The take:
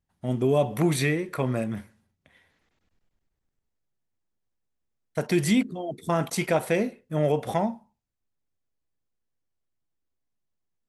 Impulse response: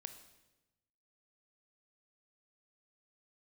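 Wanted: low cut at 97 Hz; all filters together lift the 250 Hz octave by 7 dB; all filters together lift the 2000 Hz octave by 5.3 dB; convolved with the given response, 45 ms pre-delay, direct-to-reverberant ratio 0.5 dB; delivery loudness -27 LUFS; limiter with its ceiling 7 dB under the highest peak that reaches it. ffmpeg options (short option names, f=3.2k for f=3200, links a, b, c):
-filter_complex "[0:a]highpass=97,equalizer=f=250:t=o:g=9,equalizer=f=2k:t=o:g=6,alimiter=limit=-11.5dB:level=0:latency=1,asplit=2[a][b];[1:a]atrim=start_sample=2205,adelay=45[c];[b][c]afir=irnorm=-1:irlink=0,volume=4.5dB[d];[a][d]amix=inputs=2:normalize=0,volume=-6dB"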